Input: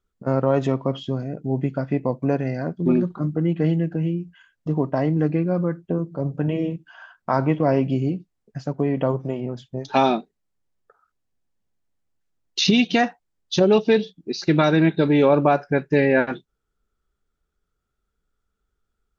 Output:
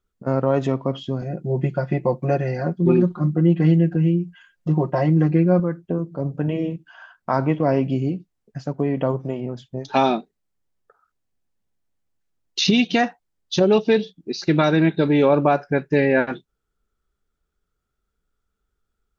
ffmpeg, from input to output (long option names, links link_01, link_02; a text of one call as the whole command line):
ffmpeg -i in.wav -filter_complex "[0:a]asettb=1/sr,asplit=3[link_01][link_02][link_03];[link_01]atrim=end=1.214[link_04];[link_02]atrim=start=1.21:end=5.6,asetpts=PTS-STARTPTS,afade=type=in:duration=0.004:curve=qsin,afade=type=out:start_time=4.386:duration=0.004:curve=qsin,aecho=1:1:5.6:0.96,atrim=end_sample=193599[link_05];[link_03]atrim=start=5.596[link_06];[link_04][link_05]acrossfade=duration=0.004:curve1=hsin:curve2=qsin[link_07];[link_07][link_06]acrossfade=duration=0.004:curve1=qsin:curve2=hsin" out.wav